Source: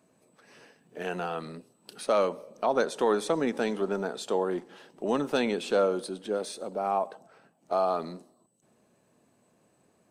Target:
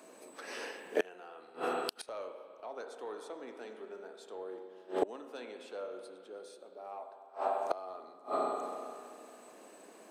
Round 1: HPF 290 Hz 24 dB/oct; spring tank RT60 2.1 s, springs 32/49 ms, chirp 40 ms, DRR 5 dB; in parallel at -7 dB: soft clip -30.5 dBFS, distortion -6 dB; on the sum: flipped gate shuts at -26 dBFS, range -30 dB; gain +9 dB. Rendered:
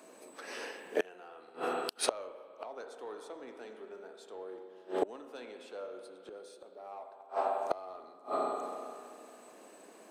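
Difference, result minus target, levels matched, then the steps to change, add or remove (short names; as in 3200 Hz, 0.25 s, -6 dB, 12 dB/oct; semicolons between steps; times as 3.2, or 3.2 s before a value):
soft clip: distortion +9 dB
change: soft clip -20.5 dBFS, distortion -15 dB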